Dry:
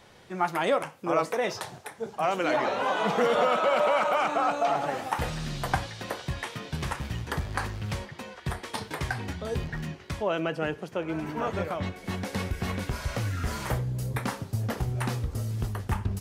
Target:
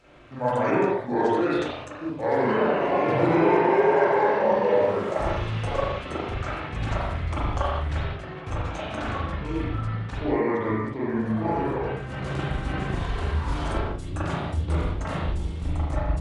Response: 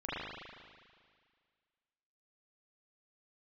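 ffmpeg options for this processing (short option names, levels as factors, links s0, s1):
-filter_complex "[0:a]asetrate=31183,aresample=44100,atempo=1.41421[s0];[1:a]atrim=start_sample=2205,afade=t=out:st=0.27:d=0.01,atrim=end_sample=12348[s1];[s0][s1]afir=irnorm=-1:irlink=0"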